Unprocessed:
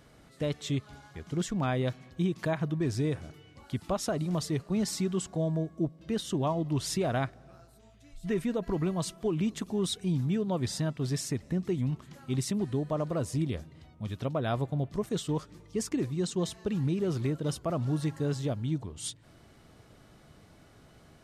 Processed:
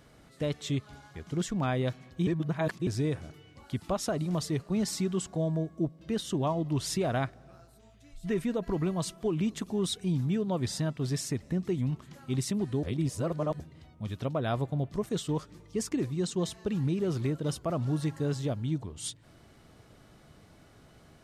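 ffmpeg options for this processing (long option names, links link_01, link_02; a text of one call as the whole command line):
ffmpeg -i in.wav -filter_complex "[0:a]asplit=5[link_01][link_02][link_03][link_04][link_05];[link_01]atrim=end=2.272[link_06];[link_02]atrim=start=2.268:end=2.872,asetpts=PTS-STARTPTS,areverse[link_07];[link_03]atrim=start=2.868:end=12.832[link_08];[link_04]atrim=start=12.828:end=13.602,asetpts=PTS-STARTPTS,areverse[link_09];[link_05]atrim=start=13.598[link_10];[link_06][link_07]acrossfade=duration=0.004:curve1=hsin:curve2=hsin[link_11];[link_11][link_08]acrossfade=duration=0.004:curve1=hsin:curve2=hsin[link_12];[link_12][link_09]acrossfade=duration=0.004:curve1=hsin:curve2=hsin[link_13];[link_13][link_10]acrossfade=duration=0.004:curve1=hsin:curve2=hsin" out.wav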